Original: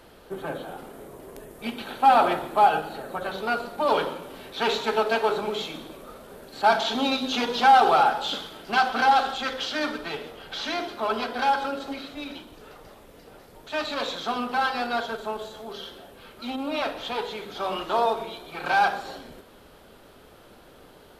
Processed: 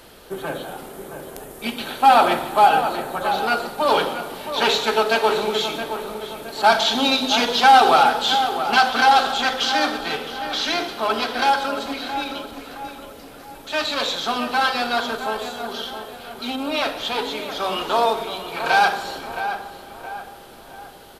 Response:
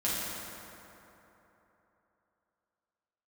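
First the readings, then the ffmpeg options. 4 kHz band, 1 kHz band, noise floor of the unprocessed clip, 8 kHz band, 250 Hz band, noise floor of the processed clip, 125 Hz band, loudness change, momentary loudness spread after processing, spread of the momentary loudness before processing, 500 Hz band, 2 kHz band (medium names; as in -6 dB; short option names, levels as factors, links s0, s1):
+9.0 dB, +5.0 dB, -51 dBFS, +10.5 dB, +4.0 dB, -42 dBFS, +4.0 dB, +5.0 dB, 19 LU, 19 LU, +4.5 dB, +6.5 dB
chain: -filter_complex "[0:a]highshelf=f=2600:g=8,asplit=2[s0][s1];[s1]adelay=669,lowpass=f=2300:p=1,volume=0.355,asplit=2[s2][s3];[s3]adelay=669,lowpass=f=2300:p=1,volume=0.46,asplit=2[s4][s5];[s5]adelay=669,lowpass=f=2300:p=1,volume=0.46,asplit=2[s6][s7];[s7]adelay=669,lowpass=f=2300:p=1,volume=0.46,asplit=2[s8][s9];[s9]adelay=669,lowpass=f=2300:p=1,volume=0.46[s10];[s0][s2][s4][s6][s8][s10]amix=inputs=6:normalize=0,asplit=2[s11][s12];[1:a]atrim=start_sample=2205,asetrate=27783,aresample=44100[s13];[s12][s13]afir=irnorm=-1:irlink=0,volume=0.0422[s14];[s11][s14]amix=inputs=2:normalize=0,volume=1.41"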